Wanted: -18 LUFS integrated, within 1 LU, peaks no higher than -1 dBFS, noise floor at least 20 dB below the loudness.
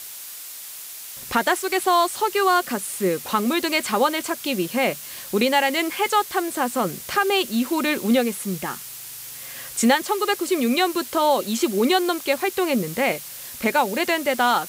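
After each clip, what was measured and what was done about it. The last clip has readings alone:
noise floor -37 dBFS; noise floor target -42 dBFS; loudness -22.0 LUFS; peak -5.5 dBFS; loudness target -18.0 LUFS
-> denoiser 6 dB, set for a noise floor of -37 dBFS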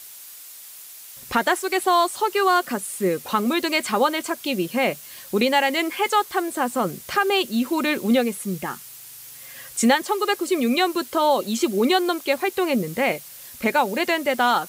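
noise floor -42 dBFS; loudness -22.0 LUFS; peak -5.5 dBFS; loudness target -18.0 LUFS
-> gain +4 dB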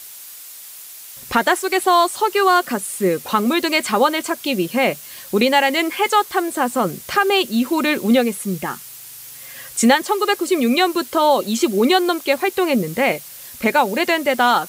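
loudness -18.0 LUFS; peak -1.5 dBFS; noise floor -38 dBFS

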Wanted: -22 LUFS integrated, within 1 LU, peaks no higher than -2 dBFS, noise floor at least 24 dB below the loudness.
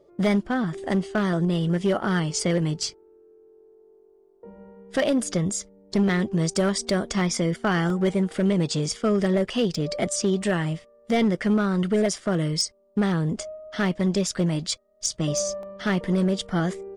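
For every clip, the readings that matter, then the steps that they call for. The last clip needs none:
clipped 1.3%; flat tops at -15.5 dBFS; dropouts 5; longest dropout 1.4 ms; loudness -24.5 LUFS; peak -15.5 dBFS; loudness target -22.0 LUFS
-> clip repair -15.5 dBFS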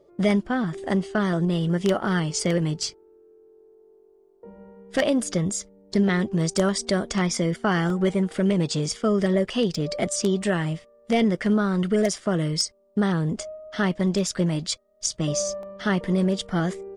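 clipped 0.0%; dropouts 5; longest dropout 1.4 ms
-> interpolate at 7.9/9.75/14.29/15.63/16.41, 1.4 ms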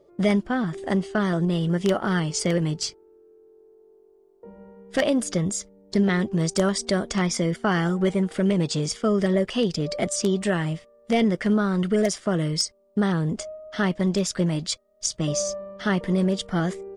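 dropouts 0; loudness -24.5 LUFS; peak -6.5 dBFS; loudness target -22.0 LUFS
-> gain +2.5 dB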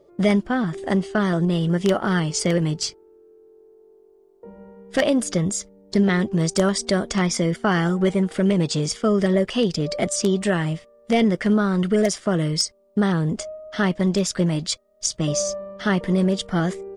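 loudness -22.0 LUFS; peak -4.0 dBFS; noise floor -55 dBFS

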